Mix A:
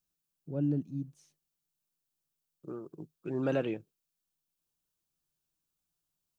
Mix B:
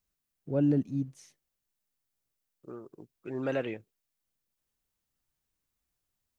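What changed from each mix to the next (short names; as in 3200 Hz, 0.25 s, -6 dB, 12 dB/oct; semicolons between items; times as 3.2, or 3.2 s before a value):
first voice +9.0 dB; master: add thirty-one-band EQ 160 Hz -12 dB, 315 Hz -5 dB, 2000 Hz +9 dB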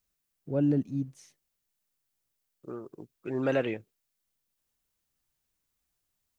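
second voice +4.0 dB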